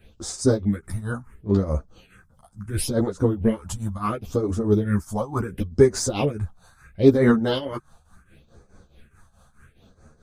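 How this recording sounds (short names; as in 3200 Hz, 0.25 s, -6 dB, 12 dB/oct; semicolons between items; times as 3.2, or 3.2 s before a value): phasing stages 4, 0.72 Hz, lowest notch 350–3000 Hz; tremolo triangle 4.7 Hz, depth 85%; a shimmering, thickened sound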